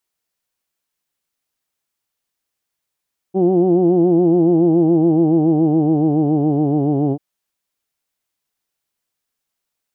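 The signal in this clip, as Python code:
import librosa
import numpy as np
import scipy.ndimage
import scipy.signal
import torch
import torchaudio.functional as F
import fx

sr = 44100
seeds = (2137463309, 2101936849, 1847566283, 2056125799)

y = fx.formant_vowel(sr, seeds[0], length_s=3.84, hz=183.0, glide_st=-4.5, vibrato_hz=7.1, vibrato_st=0.9, f1_hz=340.0, f2_hz=760.0, f3_hz=3000.0)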